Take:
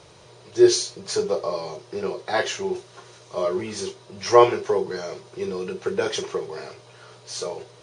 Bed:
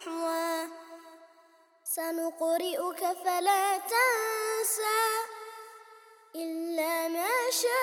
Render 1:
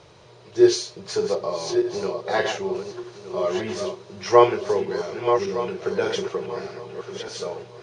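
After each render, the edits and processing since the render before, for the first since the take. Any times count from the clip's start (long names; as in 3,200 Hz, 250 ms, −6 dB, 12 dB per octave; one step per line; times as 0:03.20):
feedback delay that plays each chunk backwards 607 ms, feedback 42%, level −6.5 dB
high-frequency loss of the air 76 metres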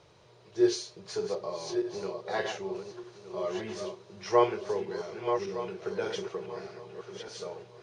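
level −9 dB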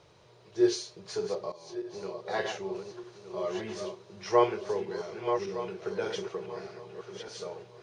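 0:01.52–0:02.30: fade in, from −15 dB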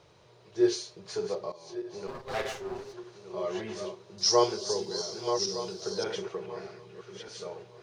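0:02.07–0:02.94: lower of the sound and its delayed copy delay 7.5 ms
0:04.18–0:06.04: high shelf with overshoot 3,400 Hz +13 dB, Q 3
0:06.75–0:07.44: parametric band 690 Hz −9.5 dB → −3 dB 1.4 octaves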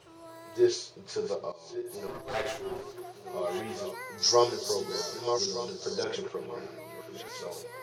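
mix in bed −17.5 dB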